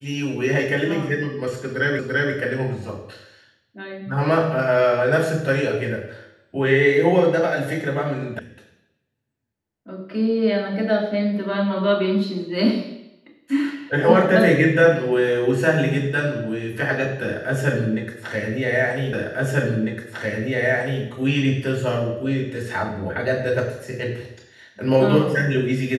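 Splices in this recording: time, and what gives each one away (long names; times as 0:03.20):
0:01.99: the same again, the last 0.34 s
0:08.39: cut off before it has died away
0:19.13: the same again, the last 1.9 s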